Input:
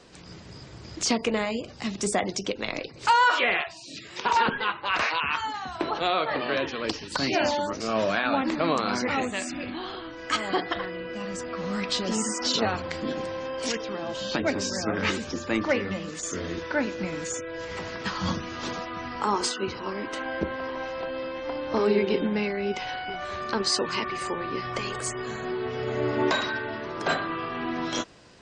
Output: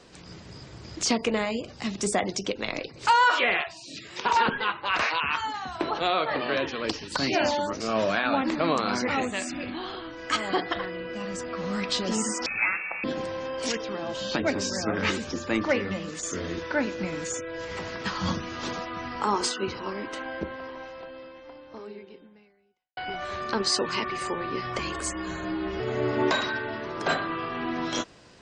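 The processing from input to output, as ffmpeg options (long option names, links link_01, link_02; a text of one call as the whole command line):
ffmpeg -i in.wav -filter_complex "[0:a]asettb=1/sr,asplit=3[link_01][link_02][link_03];[link_01]atrim=end=12.464[link_04];[link_02]atrim=start=12.46:end=13.04,asetpts=PTS-STARTPTS,afade=type=in:duration=0.004:curve=qsin,afade=type=out:start_time=0.576:duration=0.004:curve=qsin,lowpass=frequency=2400:width_type=q:width=0.5098,lowpass=frequency=2400:width_type=q:width=0.6013,lowpass=frequency=2400:width_type=q:width=0.9,lowpass=frequency=2400:width_type=q:width=2.563,afreqshift=-2800[link_05];[link_03]atrim=start=13.036[link_06];[link_04][link_05]acrossfade=duration=0.004:curve1=hsin:curve2=qsin[link_07];[link_07][link_06]acrossfade=duration=0.004:curve1=qsin:curve2=hsin,asettb=1/sr,asplit=3[link_08][link_09][link_10];[link_08]atrim=end=24.794[link_11];[link_09]atrim=start=24.79:end=25.8,asetpts=PTS-STARTPTS,afade=type=in:duration=0.004:curve=qsin,afade=type=out:start_time=1.006:duration=0.004:curve=qsin,afreqshift=-53[link_12];[link_10]atrim=start=25.796[link_13];[link_11][link_12]acrossfade=duration=0.004:curve1=hsin:curve2=qsin[link_14];[link_14][link_13]acrossfade=duration=0.004:curve1=qsin:curve2=hsin,asplit=2[link_15][link_16];[link_15]atrim=end=22.97,asetpts=PTS-STARTPTS,afade=type=out:start_time=19.74:duration=3.23:curve=qua[link_17];[link_16]atrim=start=22.97,asetpts=PTS-STARTPTS,afade=type=in:duration=0.004:curve=hsin[link_18];[link_17][link_18]concat=n=2:v=0:a=1" out.wav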